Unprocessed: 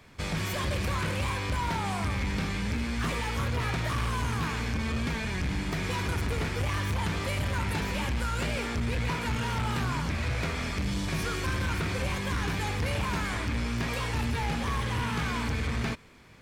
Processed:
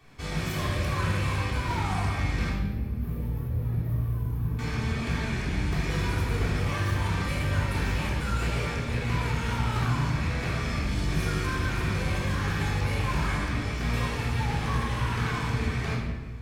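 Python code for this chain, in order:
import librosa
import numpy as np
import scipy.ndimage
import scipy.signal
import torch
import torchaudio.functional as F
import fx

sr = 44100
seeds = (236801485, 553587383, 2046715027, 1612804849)

y = fx.curve_eq(x, sr, hz=(120.0, 500.0, 1200.0, 7700.0, 14000.0), db=(0, -8, -21, -26, 6), at=(2.49, 4.59))
y = fx.room_shoebox(y, sr, seeds[0], volume_m3=1000.0, walls='mixed', distance_m=3.5)
y = F.gain(torch.from_numpy(y), -6.5).numpy()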